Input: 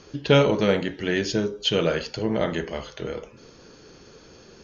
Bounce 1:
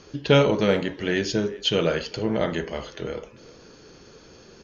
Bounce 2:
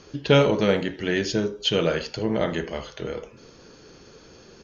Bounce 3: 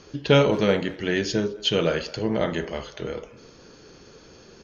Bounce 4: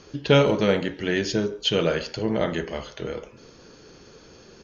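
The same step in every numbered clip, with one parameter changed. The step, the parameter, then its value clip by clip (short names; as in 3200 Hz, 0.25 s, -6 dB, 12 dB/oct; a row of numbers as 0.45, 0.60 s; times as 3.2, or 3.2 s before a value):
speakerphone echo, time: 390, 80, 210, 140 ms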